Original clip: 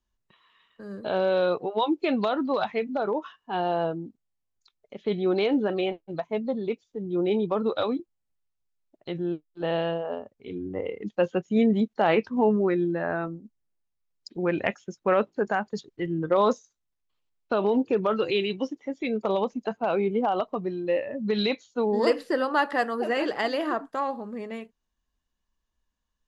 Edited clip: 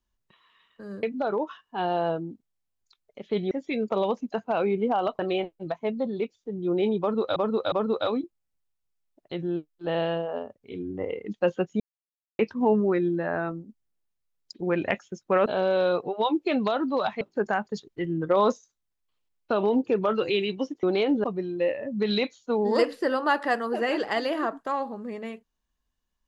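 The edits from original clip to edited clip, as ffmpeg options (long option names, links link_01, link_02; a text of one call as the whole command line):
ffmpeg -i in.wav -filter_complex "[0:a]asplit=12[link_01][link_02][link_03][link_04][link_05][link_06][link_07][link_08][link_09][link_10][link_11][link_12];[link_01]atrim=end=1.032[link_13];[link_02]atrim=start=2.778:end=5.262[link_14];[link_03]atrim=start=18.838:end=20.522[link_15];[link_04]atrim=start=5.668:end=7.842[link_16];[link_05]atrim=start=7.478:end=7.842[link_17];[link_06]atrim=start=7.478:end=11.56,asetpts=PTS-STARTPTS,afade=type=out:start_time=4.078:duration=0.004:curve=hsin[link_18];[link_07]atrim=start=11.56:end=12.15,asetpts=PTS-STARTPTS,volume=0[link_19];[link_08]atrim=start=12.15:end=15.222,asetpts=PTS-STARTPTS,afade=type=in:duration=0.004:curve=hsin[link_20];[link_09]atrim=start=1.028:end=2.782[link_21];[link_10]atrim=start=15.218:end=18.842[link_22];[link_11]atrim=start=5.258:end=5.672[link_23];[link_12]atrim=start=20.518[link_24];[link_13][link_14]acrossfade=duration=0.004:curve1=hsin:curve2=hsin[link_25];[link_25][link_15]acrossfade=duration=0.004:curve1=hsin:curve2=hsin[link_26];[link_26][link_16]acrossfade=duration=0.004:curve1=hsin:curve2=hsin[link_27];[link_27][link_17]acrossfade=duration=0.004:curve1=hsin:curve2=hsin[link_28];[link_18][link_19][link_20]concat=n=3:v=0:a=1[link_29];[link_28][link_29]acrossfade=duration=0.004:curve1=hsin:curve2=hsin[link_30];[link_30][link_21]acrossfade=duration=0.004:curve1=hsin:curve2=hsin[link_31];[link_31][link_22]acrossfade=duration=0.004:curve1=hsin:curve2=hsin[link_32];[link_32][link_23]acrossfade=duration=0.004:curve1=hsin:curve2=hsin[link_33];[link_33][link_24]acrossfade=duration=0.004:curve1=hsin:curve2=hsin" out.wav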